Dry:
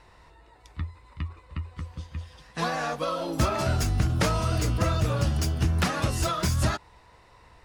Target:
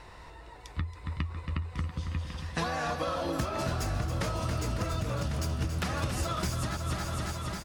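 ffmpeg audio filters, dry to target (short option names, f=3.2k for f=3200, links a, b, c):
-filter_complex "[0:a]asplit=2[a][b];[b]aecho=0:1:276|552|828|1104|1380|1656|1932:0.355|0.209|0.124|0.0729|0.043|0.0254|0.015[c];[a][c]amix=inputs=2:normalize=0,acompressor=threshold=-34dB:ratio=10,asplit=2[d][e];[e]aecho=0:1:1099:0.316[f];[d][f]amix=inputs=2:normalize=0,volume=5.5dB"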